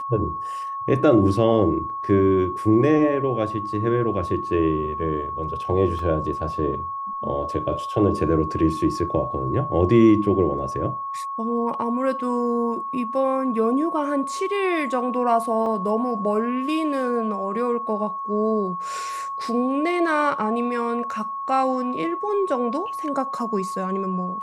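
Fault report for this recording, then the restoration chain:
whine 1.1 kHz -27 dBFS
5.99 s: dropout 2.4 ms
15.66 s: dropout 2.5 ms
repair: band-stop 1.1 kHz, Q 30; interpolate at 5.99 s, 2.4 ms; interpolate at 15.66 s, 2.5 ms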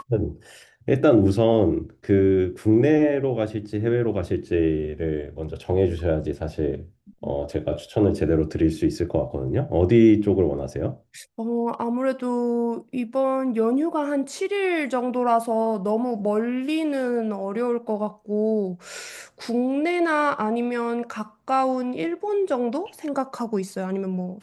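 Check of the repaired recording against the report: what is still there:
nothing left

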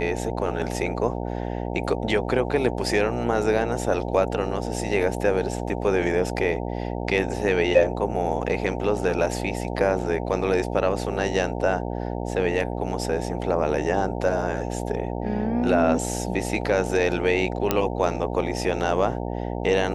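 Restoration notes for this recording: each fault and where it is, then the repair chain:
buzz 60 Hz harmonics 15 -29 dBFS
17.71 s: pop -5 dBFS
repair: de-click; de-hum 60 Hz, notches 15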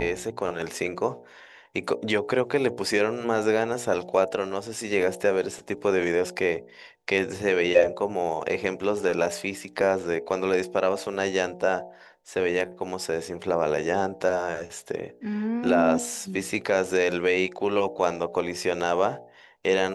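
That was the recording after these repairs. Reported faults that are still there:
nothing left

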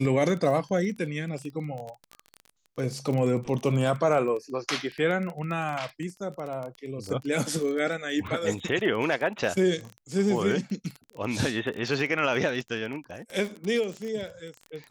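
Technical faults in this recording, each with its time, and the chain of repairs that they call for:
crackle 21 per s -31 dBFS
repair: de-click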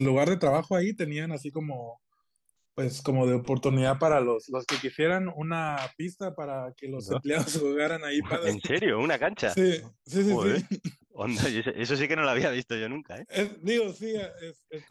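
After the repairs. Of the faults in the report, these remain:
nothing left

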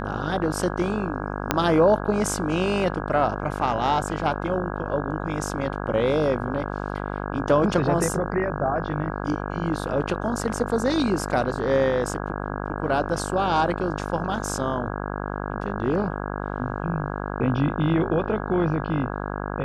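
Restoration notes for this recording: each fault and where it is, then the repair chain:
buzz 50 Hz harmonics 33 -30 dBFS
1.51 s: pop -4 dBFS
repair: de-click; de-hum 50 Hz, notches 33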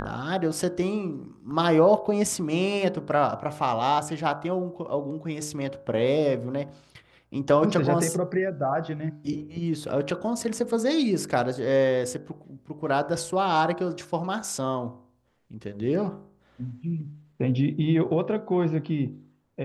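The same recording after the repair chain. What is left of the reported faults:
1.51 s: pop

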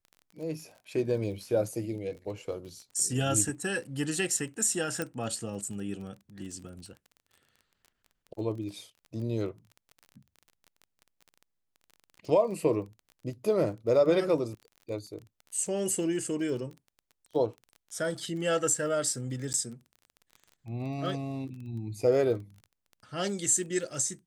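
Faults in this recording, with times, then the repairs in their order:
crackle 24 per s -40 dBFS
5.02 s: pop -17 dBFS
19.53–19.54 s: dropout 9.6 ms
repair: de-click; interpolate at 19.53 s, 9.6 ms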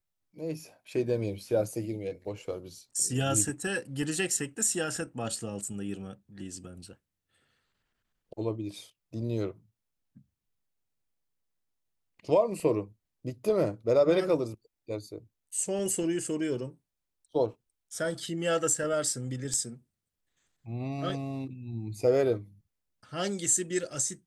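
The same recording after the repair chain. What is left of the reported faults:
nothing left

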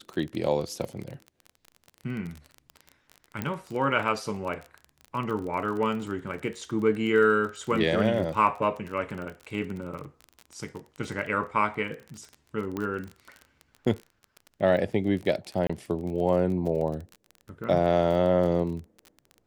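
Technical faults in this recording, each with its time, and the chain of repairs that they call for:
crackle 27 per s -33 dBFS
3.42 s: pop -16 dBFS
12.77 s: pop -19 dBFS
15.67–15.70 s: dropout 25 ms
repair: de-click; interpolate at 15.67 s, 25 ms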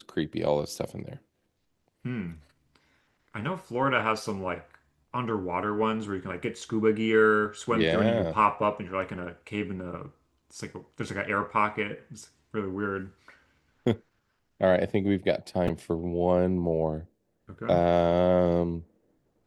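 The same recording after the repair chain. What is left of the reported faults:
nothing left

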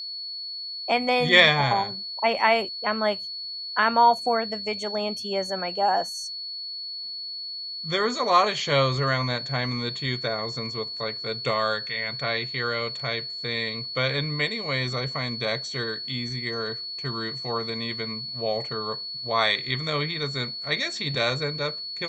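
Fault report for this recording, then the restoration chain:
whine 4.4 kHz -32 dBFS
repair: band-stop 4.4 kHz, Q 30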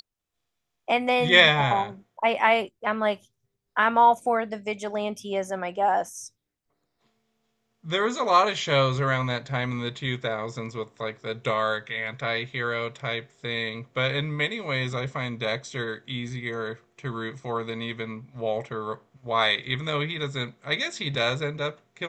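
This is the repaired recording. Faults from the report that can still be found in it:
nothing left

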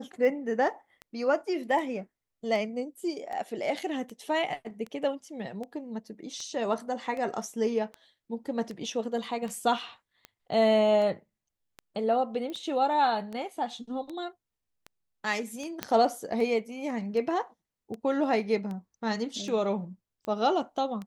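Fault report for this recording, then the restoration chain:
tick 78 rpm -26 dBFS
12.50 s: pop -26 dBFS
15.83 s: pop -13 dBFS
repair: de-click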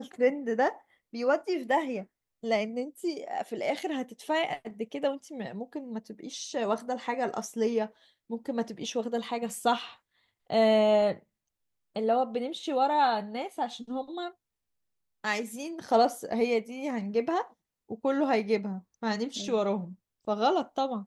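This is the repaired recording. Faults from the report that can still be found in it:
12.50 s: pop

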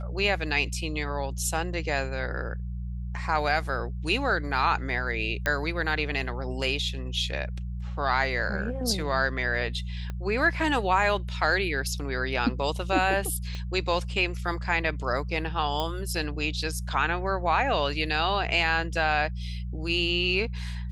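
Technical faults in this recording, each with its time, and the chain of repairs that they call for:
hum 60 Hz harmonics 3 -33 dBFS
5.46 s: pop -12 dBFS
10.10 s: pop -22 dBFS
13.55 s: pop -24 dBFS
15.80 s: pop -16 dBFS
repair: de-click; de-hum 60 Hz, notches 3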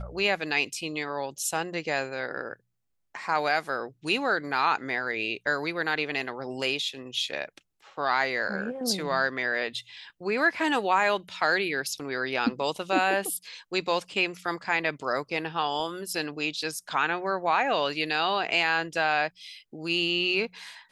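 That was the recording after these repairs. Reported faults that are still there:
10.10 s: pop
13.55 s: pop

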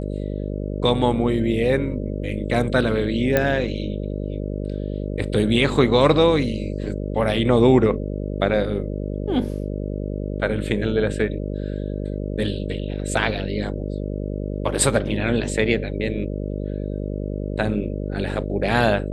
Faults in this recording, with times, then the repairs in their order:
buzz 50 Hz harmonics 12 -27 dBFS
3.37 s: pop -5 dBFS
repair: de-click; de-hum 50 Hz, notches 12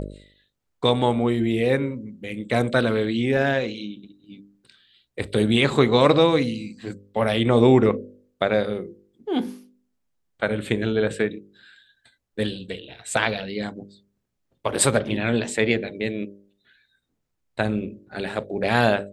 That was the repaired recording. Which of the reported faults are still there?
nothing left

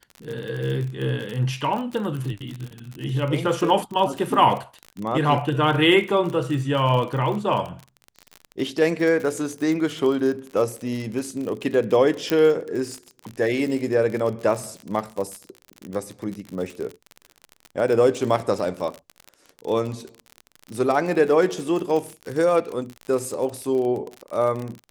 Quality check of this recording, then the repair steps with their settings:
crackle 45 per s -28 dBFS
12.30 s: pop -8 dBFS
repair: de-click

